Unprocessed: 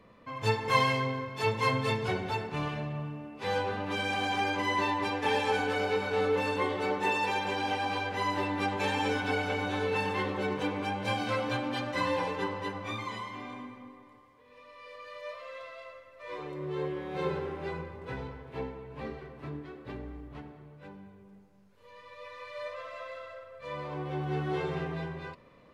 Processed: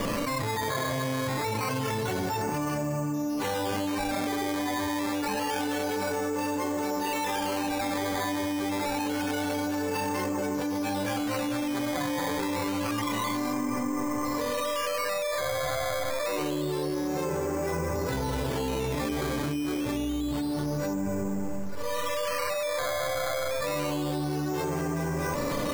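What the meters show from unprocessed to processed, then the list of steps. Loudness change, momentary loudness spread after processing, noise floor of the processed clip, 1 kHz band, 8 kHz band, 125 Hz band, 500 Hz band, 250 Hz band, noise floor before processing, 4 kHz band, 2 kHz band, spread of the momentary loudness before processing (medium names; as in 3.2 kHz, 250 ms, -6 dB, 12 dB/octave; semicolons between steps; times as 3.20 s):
+2.5 dB, 1 LU, -30 dBFS, +1.0 dB, +14.5 dB, +2.5 dB, +3.5 dB, +8.0 dB, -57 dBFS, +2.5 dB, -0.5 dB, 17 LU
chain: local Wiener filter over 9 samples; feedback comb 290 Hz, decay 0.16 s, harmonics all, mix 80%; decimation with a swept rate 11×, swing 100% 0.27 Hz; level flattener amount 100%; trim +2.5 dB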